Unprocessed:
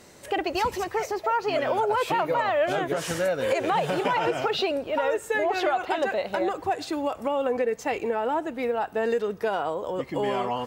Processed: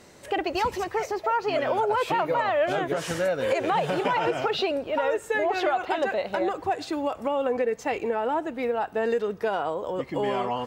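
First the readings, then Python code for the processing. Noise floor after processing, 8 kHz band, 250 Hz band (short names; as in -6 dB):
-45 dBFS, -2.5 dB, 0.0 dB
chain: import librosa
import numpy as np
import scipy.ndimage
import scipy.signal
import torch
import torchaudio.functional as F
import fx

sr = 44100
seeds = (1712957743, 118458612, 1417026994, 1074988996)

y = fx.high_shelf(x, sr, hz=7700.0, db=-6.0)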